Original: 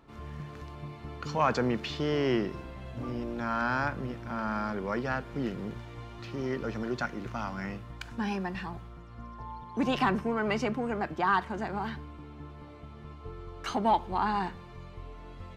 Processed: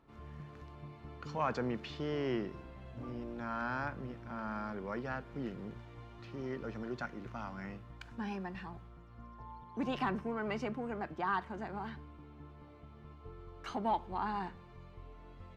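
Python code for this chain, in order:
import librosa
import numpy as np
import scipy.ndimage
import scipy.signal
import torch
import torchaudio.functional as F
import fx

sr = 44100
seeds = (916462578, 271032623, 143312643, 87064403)

y = fx.high_shelf(x, sr, hz=4300.0, db=-7.0)
y = y * librosa.db_to_amplitude(-7.5)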